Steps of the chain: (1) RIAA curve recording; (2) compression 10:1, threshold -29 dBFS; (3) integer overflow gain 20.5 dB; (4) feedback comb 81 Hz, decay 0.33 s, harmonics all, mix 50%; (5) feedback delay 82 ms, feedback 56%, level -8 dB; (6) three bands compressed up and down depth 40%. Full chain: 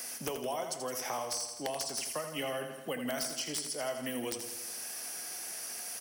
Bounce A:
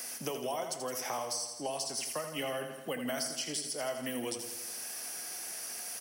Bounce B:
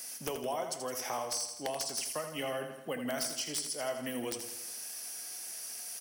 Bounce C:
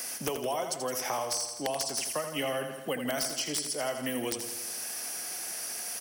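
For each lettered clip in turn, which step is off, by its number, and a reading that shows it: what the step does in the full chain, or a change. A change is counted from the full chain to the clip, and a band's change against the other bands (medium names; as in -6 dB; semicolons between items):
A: 3, distortion -14 dB; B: 6, crest factor change -5.0 dB; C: 4, loudness change +4.0 LU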